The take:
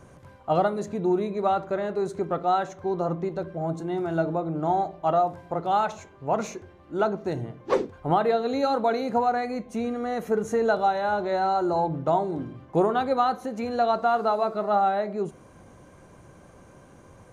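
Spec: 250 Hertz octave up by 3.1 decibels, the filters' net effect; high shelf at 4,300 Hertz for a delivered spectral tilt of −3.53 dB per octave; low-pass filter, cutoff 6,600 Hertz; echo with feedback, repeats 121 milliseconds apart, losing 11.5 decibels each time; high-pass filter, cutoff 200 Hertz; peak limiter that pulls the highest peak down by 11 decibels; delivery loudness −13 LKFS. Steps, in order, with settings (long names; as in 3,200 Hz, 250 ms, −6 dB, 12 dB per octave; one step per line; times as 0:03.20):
high-pass filter 200 Hz
low-pass filter 6,600 Hz
parametric band 250 Hz +6.5 dB
high-shelf EQ 4,300 Hz −3.5 dB
brickwall limiter −19.5 dBFS
repeating echo 121 ms, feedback 27%, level −11.5 dB
level +15.5 dB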